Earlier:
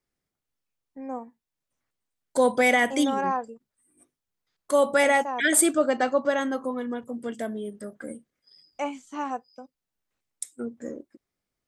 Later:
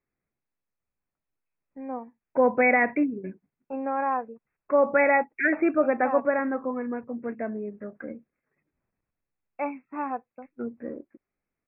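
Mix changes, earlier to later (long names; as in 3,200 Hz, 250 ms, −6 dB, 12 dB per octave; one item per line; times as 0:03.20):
first voice: entry +0.80 s
master: add linear-phase brick-wall low-pass 2,700 Hz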